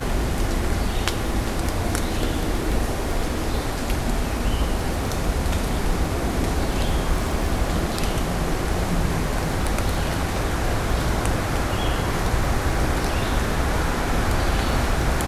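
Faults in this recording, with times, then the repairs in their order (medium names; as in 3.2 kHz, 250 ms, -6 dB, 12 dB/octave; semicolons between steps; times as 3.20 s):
crackle 20 per s -29 dBFS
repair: de-click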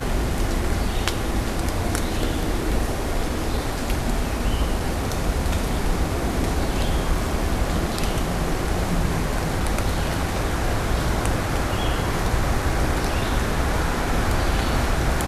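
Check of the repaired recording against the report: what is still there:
nothing left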